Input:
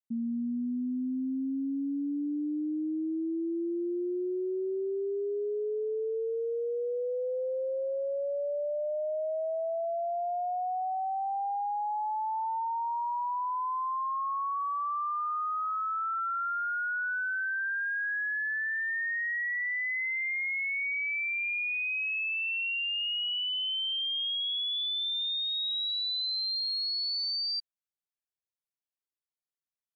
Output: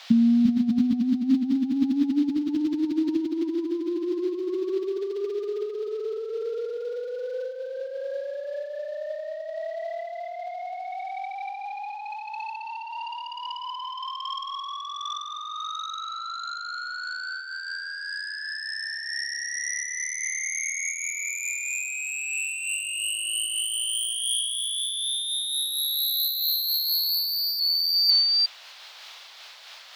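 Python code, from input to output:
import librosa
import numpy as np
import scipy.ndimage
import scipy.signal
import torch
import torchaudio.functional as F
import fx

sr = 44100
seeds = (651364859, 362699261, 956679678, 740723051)

y = fx.low_shelf(x, sr, hz=460.0, db=-7.5)
y = fx.echo_multitap(y, sr, ms=(346, 347, 504, 860), db=(-8.5, -4.0, -4.5, -13.0))
y = fx.fold_sine(y, sr, drive_db=8, ceiling_db=-19.5)
y = fx.dmg_noise_band(y, sr, seeds[0], low_hz=640.0, high_hz=4100.0, level_db=-54.0)
y = fx.over_compress(y, sr, threshold_db=-28.0, ratio=-0.5)
y = fx.bass_treble(y, sr, bass_db=15, treble_db=14)
y = fx.am_noise(y, sr, seeds[1], hz=5.7, depth_pct=60)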